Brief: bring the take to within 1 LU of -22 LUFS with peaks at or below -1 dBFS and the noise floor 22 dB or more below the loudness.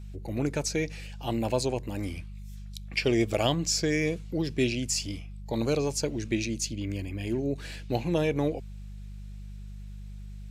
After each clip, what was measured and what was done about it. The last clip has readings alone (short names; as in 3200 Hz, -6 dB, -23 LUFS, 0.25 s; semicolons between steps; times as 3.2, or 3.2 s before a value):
hum 50 Hz; harmonics up to 200 Hz; hum level -39 dBFS; loudness -29.5 LUFS; peak -10.0 dBFS; loudness target -22.0 LUFS
-> de-hum 50 Hz, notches 4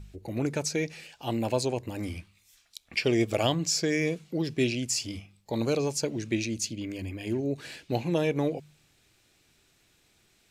hum none; loudness -30.0 LUFS; peak -10.0 dBFS; loudness target -22.0 LUFS
-> gain +8 dB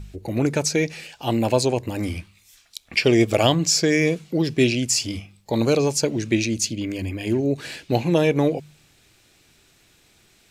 loudness -22.0 LUFS; peak -2.0 dBFS; noise floor -58 dBFS